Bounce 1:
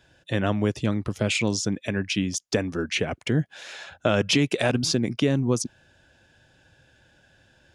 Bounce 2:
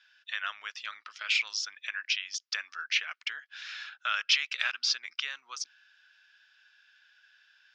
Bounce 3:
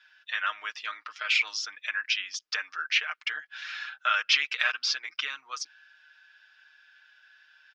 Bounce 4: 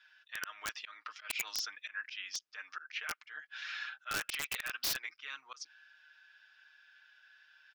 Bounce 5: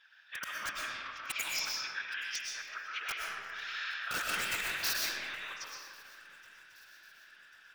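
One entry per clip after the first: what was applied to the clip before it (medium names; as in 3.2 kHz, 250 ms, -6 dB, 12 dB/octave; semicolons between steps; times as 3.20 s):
Chebyshev band-pass 1.3–5.4 kHz, order 3
treble shelf 2.5 kHz -10 dB; comb 6.5 ms, depth 67%; trim +6.5 dB
slow attack 185 ms; integer overflow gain 23 dB; trim -4 dB
whisper effect; shuffle delay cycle 1094 ms, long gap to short 3:1, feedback 50%, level -23 dB; algorithmic reverb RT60 1.9 s, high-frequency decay 0.55×, pre-delay 80 ms, DRR -3 dB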